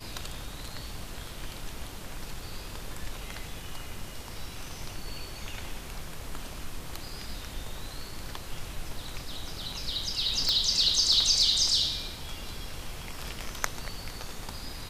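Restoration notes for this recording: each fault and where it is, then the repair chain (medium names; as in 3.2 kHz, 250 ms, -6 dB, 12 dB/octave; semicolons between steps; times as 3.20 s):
10.49 s: pop -13 dBFS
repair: de-click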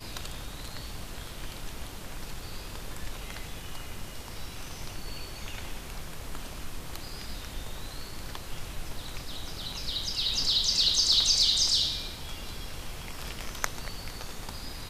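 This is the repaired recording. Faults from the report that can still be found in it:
nothing left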